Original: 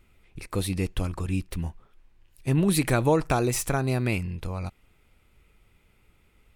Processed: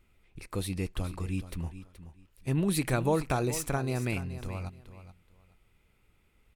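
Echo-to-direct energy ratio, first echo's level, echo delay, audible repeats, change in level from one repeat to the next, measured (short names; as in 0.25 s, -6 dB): -13.0 dB, -13.0 dB, 0.426 s, 2, -13.5 dB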